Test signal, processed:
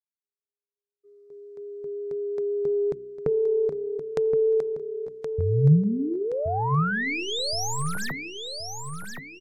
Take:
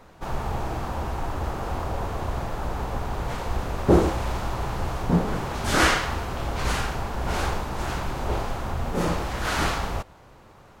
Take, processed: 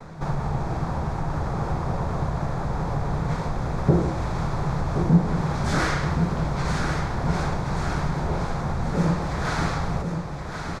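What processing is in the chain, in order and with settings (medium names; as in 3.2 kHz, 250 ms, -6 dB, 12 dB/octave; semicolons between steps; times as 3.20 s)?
tracing distortion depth 0.038 ms; vibrato 5.6 Hz 6.7 cents; peaking EQ 2.9 kHz -11.5 dB 0.34 oct; de-hum 62.67 Hz, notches 6; compression 2:1, threshold -39 dBFS; feedback delay 1072 ms, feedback 42%, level -7 dB; gate -58 dBFS, range -42 dB; low-pass 7.1 kHz 12 dB/octave; peaking EQ 150 Hz +14.5 dB 0.55 oct; trim +7.5 dB; AAC 160 kbps 48 kHz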